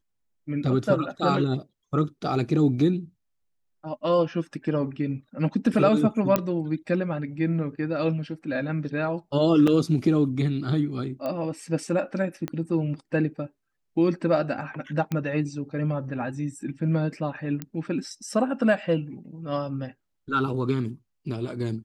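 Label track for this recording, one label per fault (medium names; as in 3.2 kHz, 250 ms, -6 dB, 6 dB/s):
6.360000	6.360000	pop -8 dBFS
9.670000	9.670000	dropout 4.7 ms
11.260000	11.260000	pop -19 dBFS
12.480000	12.480000	pop -17 dBFS
15.120000	15.120000	pop -16 dBFS
17.620000	17.620000	pop -17 dBFS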